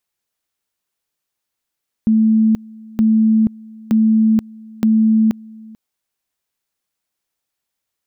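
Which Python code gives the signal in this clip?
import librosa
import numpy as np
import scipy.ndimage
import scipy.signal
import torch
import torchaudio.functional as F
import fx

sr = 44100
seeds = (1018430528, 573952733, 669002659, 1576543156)

y = fx.two_level_tone(sr, hz=220.0, level_db=-9.5, drop_db=24.5, high_s=0.48, low_s=0.44, rounds=4)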